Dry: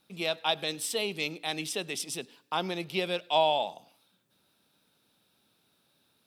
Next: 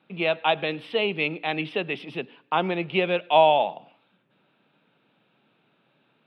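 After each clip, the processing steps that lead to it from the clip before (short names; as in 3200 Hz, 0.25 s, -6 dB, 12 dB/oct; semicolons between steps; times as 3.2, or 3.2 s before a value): elliptic band-pass 130–2800 Hz, stop band 40 dB; gain +8 dB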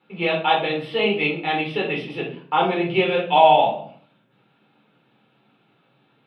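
shoebox room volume 360 m³, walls furnished, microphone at 4.2 m; gain -3 dB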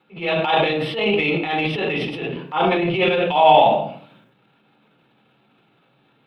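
transient shaper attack -9 dB, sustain +9 dB; gain +1.5 dB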